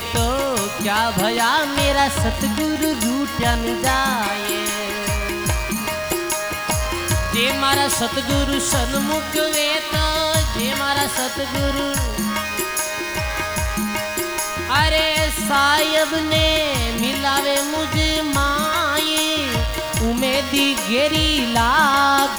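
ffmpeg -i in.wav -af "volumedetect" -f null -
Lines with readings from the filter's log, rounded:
mean_volume: -19.6 dB
max_volume: -3.2 dB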